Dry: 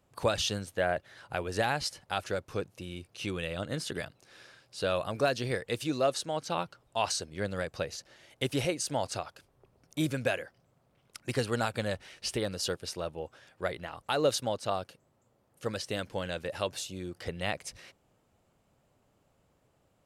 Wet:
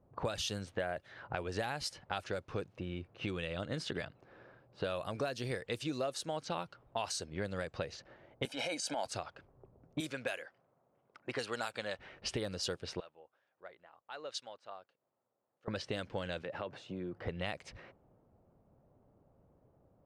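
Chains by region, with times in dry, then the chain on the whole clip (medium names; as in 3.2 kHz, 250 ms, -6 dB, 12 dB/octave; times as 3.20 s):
8.45–9.06 s: high-pass 250 Hz 24 dB/octave + comb 1.3 ms, depth 87% + transient shaper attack -10 dB, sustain +6 dB
10.00–11.99 s: high-pass 670 Hz 6 dB/octave + treble shelf 5.8 kHz +3 dB
13.00–15.68 s: low-pass 8.5 kHz + upward compressor, threshold -53 dBFS + differentiator
16.42–17.14 s: high-pass 110 Hz 24 dB/octave + compression 3:1, threshold -39 dBFS
whole clip: level-controlled noise filter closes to 750 Hz, open at -27.5 dBFS; compression 4:1, threshold -39 dBFS; trim +3.5 dB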